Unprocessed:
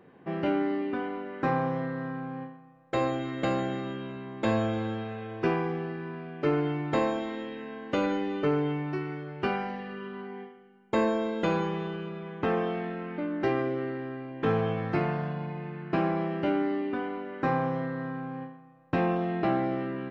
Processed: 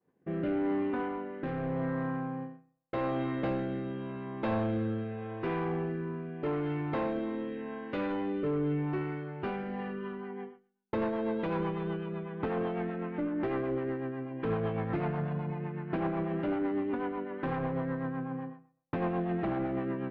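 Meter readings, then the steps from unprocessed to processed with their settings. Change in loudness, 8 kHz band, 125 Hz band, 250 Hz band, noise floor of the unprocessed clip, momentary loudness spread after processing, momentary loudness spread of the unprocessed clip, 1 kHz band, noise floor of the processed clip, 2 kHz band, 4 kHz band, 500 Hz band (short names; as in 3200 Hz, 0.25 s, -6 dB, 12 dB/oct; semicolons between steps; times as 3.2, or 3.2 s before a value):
-3.5 dB, n/a, -2.0 dB, -2.5 dB, -54 dBFS, 7 LU, 10 LU, -5.5 dB, -69 dBFS, -6.0 dB, -9.5 dB, -4.0 dB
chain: expander -43 dBFS; bell 950 Hz +5 dB 0.22 oct; in parallel at -0.5 dB: limiter -22.5 dBFS, peak gain reduction 8 dB; on the sum: soft clip -21.5 dBFS, distortion -12 dB; rotary speaker horn 0.85 Hz, later 8 Hz, at 9.52; air absorption 330 m; gain -2.5 dB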